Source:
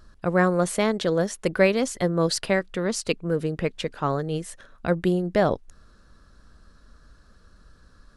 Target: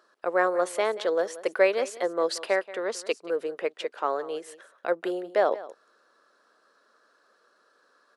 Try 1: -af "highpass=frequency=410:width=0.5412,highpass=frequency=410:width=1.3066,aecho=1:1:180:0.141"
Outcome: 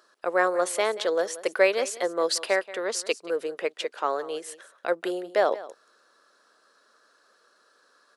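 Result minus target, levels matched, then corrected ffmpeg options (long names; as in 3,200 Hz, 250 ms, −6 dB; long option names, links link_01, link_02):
8,000 Hz band +6.5 dB
-af "highpass=frequency=410:width=0.5412,highpass=frequency=410:width=1.3066,highshelf=frequency=3000:gain=-8.5,aecho=1:1:180:0.141"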